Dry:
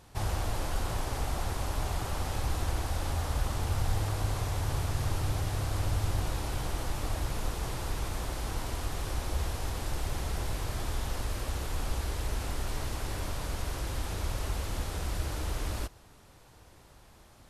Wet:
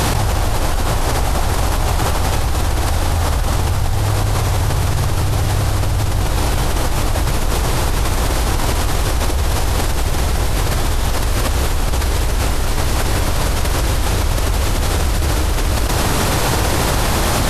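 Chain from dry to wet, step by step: level flattener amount 100%; trim +8 dB

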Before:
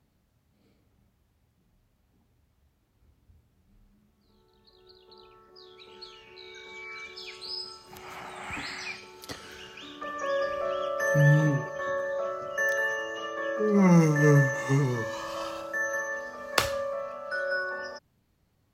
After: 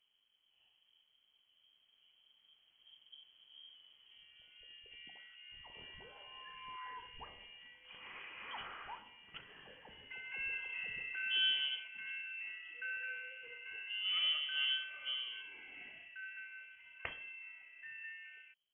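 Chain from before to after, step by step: Doppler pass-by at 4.01 s, 20 m/s, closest 25 m; frequency inversion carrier 3.2 kHz; trim +1.5 dB

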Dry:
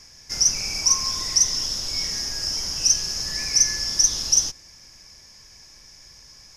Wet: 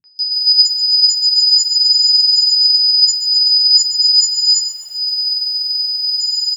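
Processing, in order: partials quantised in pitch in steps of 6 st; frequency weighting ITU-R 468; transient shaper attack +5 dB, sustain -10 dB; in parallel at -0.5 dB: peak limiter -11 dBFS, peak gain reduction 27 dB; on the sum: compression 16:1, threshold -10 dBFS, peak gain reduction 21 dB; flange 0.42 Hz, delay 7.3 ms, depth 5 ms, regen +65%; loudest bins only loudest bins 2; high-order bell 6.5 kHz +8.5 dB; three bands offset in time lows, mids, highs 40/190 ms, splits 200/2200 Hz; reverberation RT60 0.35 s, pre-delay 3 ms, DRR 6.5 dB; bit-crushed delay 128 ms, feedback 55%, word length 6-bit, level -12 dB; trim -1 dB

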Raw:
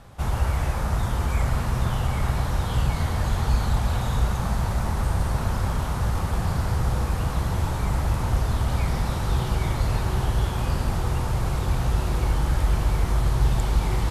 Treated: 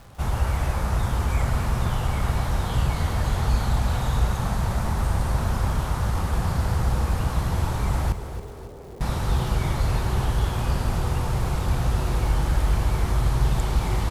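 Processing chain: 8.12–9.01 s: band-pass filter 410 Hz, Q 4.7; crackle 300 per s -42 dBFS; feedback delay 275 ms, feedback 49%, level -11 dB

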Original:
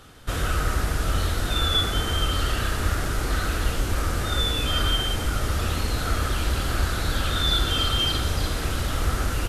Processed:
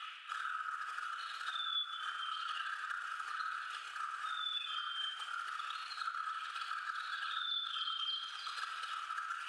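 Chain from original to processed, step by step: resonances exaggerated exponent 2; band noise 1.8–3.2 kHz -59 dBFS; peak limiter -19.5 dBFS, peak gain reduction 7.5 dB; reverse; upward compressor, threshold -30 dBFS; reverse; elliptic band-pass 1.3–9.5 kHz, stop band 70 dB; band-stop 2.1 kHz, Q 6.8; simulated room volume 3300 m³, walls furnished, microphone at 4 m; compression 4:1, threshold -41 dBFS, peak gain reduction 15 dB; trim +3 dB

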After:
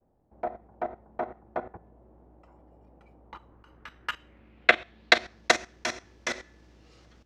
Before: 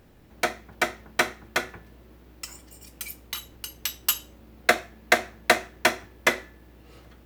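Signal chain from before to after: expander -47 dBFS; low-pass sweep 780 Hz -> 5.9 kHz, 3.17–5.51 s; level held to a coarse grid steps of 14 dB

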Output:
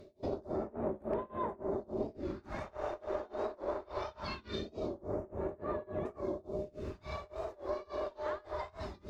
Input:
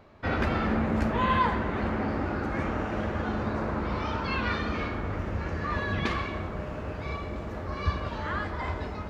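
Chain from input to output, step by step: peak limiter -21.5 dBFS, peak gain reduction 8 dB; high-order bell 2.2 kHz -8 dB; reverse; upward compressor, threshold -40 dBFS; reverse; bass shelf 200 Hz -8 dB; small resonant body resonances 390/590/3600 Hz, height 15 dB, ringing for 50 ms; Chebyshev shaper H 2 -12 dB, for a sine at -14 dBFS; phase shifter stages 2, 0.22 Hz, lowest notch 130–5000 Hz; compression 2:1, threshold -40 dBFS, peak gain reduction 10 dB; tremolo 3.5 Hz, depth 96%; hard clipper -25 dBFS, distortion -39 dB; warped record 45 rpm, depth 100 cents; trim +2.5 dB

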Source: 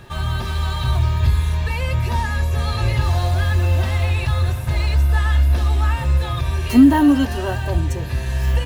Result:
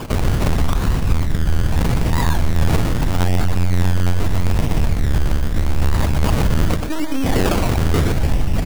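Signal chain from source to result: compressor with a negative ratio -21 dBFS, ratio -0.5; Gaussian low-pass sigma 5.5 samples; in parallel at -5 dB: fuzz box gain 35 dB, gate -36 dBFS; on the sum: comb 2.8 ms, depth 56%; peak limiter -12 dBFS, peak gain reduction 7.5 dB; LPC vocoder at 8 kHz pitch kept; on a send: delay 122 ms -4.5 dB; on the sum: decimation with a swept rate 22×, swing 60% 0.8 Hz

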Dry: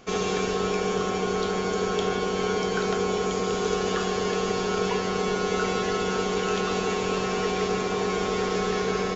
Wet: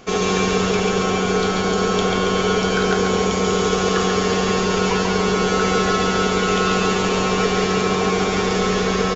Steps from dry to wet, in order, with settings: feedback delay 139 ms, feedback 60%, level -4 dB; trim +6.5 dB

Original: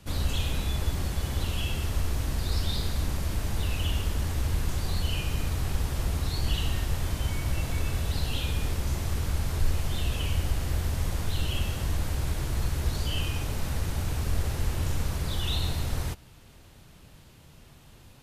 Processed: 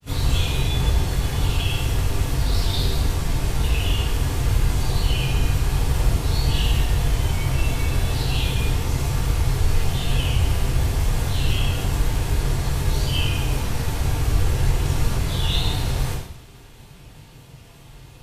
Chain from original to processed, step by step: granulator 100 ms, spray 12 ms, pitch spread up and down by 0 st; two-slope reverb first 0.68 s, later 2.8 s, from -27 dB, DRR -7 dB; trim +1 dB

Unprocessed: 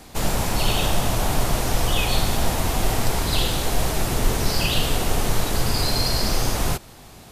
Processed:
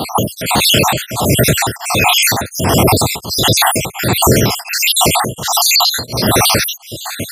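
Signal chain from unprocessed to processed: random holes in the spectrogram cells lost 68%; high-pass 93 Hz 24 dB/octave; compression, threshold -31 dBFS, peak gain reduction 9.5 dB; loudness maximiser +28.5 dB; tremolo of two beating tones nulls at 1.4 Hz

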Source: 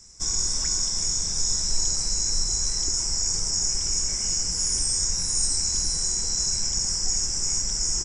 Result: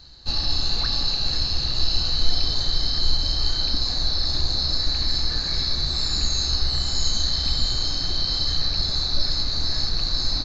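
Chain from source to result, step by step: Savitzky-Golay filter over 15 samples; peaking EQ 92 Hz +7.5 dB 0.36 oct; tape speed -23%; trim +7 dB

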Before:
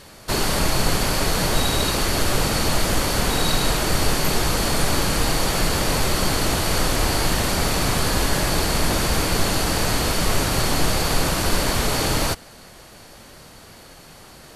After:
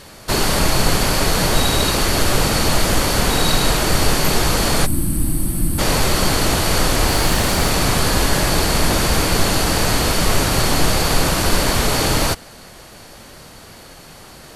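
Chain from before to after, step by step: 4.86–5.79 s: time-frequency box 350–7900 Hz -20 dB; 7.07–7.68 s: added noise pink -38 dBFS; trim +4 dB

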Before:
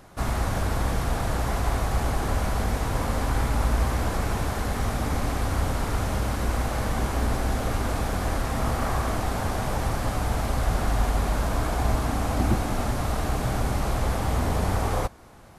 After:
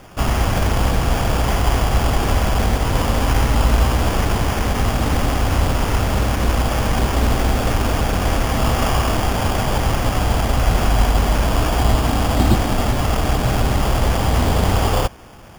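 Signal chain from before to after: sample-and-hold 11×; trim +8 dB

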